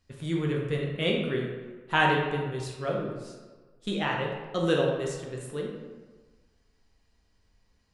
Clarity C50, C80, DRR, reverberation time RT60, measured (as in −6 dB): 2.0 dB, 4.5 dB, −2.0 dB, 1.4 s